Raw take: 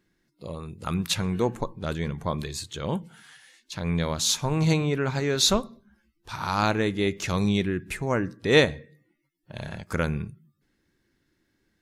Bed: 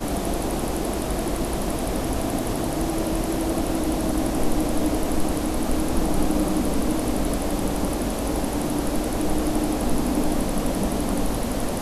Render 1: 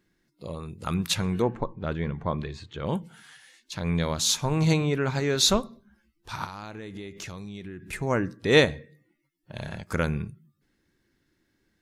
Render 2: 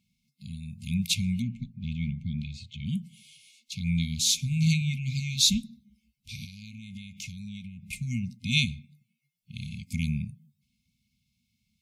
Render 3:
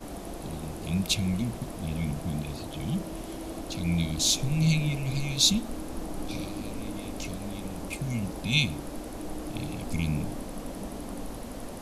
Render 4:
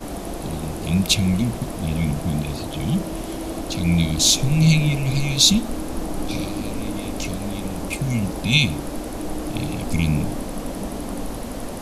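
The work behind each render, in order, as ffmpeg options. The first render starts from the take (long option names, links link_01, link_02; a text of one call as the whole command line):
ffmpeg -i in.wav -filter_complex "[0:a]asplit=3[link_01][link_02][link_03];[link_01]afade=type=out:start_time=1.41:duration=0.02[link_04];[link_02]lowpass=2500,afade=type=in:start_time=1.41:duration=0.02,afade=type=out:start_time=2.85:duration=0.02[link_05];[link_03]afade=type=in:start_time=2.85:duration=0.02[link_06];[link_04][link_05][link_06]amix=inputs=3:normalize=0,asettb=1/sr,asplit=3[link_07][link_08][link_09];[link_07]atrim=end=6.444[link_10];[link_08]atrim=start=6.44:end=7.93,asetpts=PTS-STARTPTS,afade=type=in:duration=0.004:curve=qsin,afade=type=out:start_time=1.486:duration=0.004:curve=qsin,acompressor=threshold=-34dB:ratio=16:attack=3.2:release=140:knee=1:detection=peak[link_11];[link_09]atrim=start=7.926[link_12];[link_10][link_11]acrossfade=duration=0.004:curve1=hsin:curve2=qsin[link_13];[link_13][link_12]acrossfade=duration=0.004:curve1=qsin:curve2=hsin" out.wav
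ffmpeg -i in.wav -af "highpass=49,afftfilt=real='re*(1-between(b*sr/4096,250,2100))':imag='im*(1-between(b*sr/4096,250,2100))':win_size=4096:overlap=0.75" out.wav
ffmpeg -i in.wav -i bed.wav -filter_complex "[1:a]volume=-13.5dB[link_01];[0:a][link_01]amix=inputs=2:normalize=0" out.wav
ffmpeg -i in.wav -af "volume=8.5dB,alimiter=limit=-3dB:level=0:latency=1" out.wav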